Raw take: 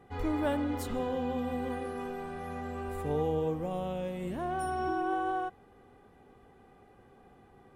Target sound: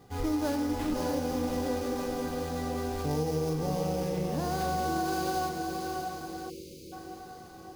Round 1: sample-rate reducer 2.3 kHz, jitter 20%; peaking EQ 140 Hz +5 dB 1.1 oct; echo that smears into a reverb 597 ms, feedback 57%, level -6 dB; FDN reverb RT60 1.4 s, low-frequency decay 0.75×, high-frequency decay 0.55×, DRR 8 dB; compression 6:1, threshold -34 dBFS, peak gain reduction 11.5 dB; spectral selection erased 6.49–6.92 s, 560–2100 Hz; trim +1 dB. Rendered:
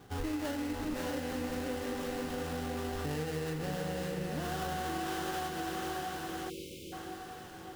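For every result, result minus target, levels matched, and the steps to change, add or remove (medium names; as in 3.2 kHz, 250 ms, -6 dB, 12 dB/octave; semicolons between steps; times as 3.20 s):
compression: peak gain reduction +6.5 dB; sample-rate reducer: distortion +8 dB
change: compression 6:1, threshold -26.5 dBFS, peak gain reduction 5.5 dB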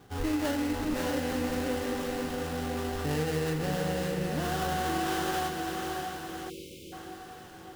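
sample-rate reducer: distortion +8 dB
change: sample-rate reducer 5.6 kHz, jitter 20%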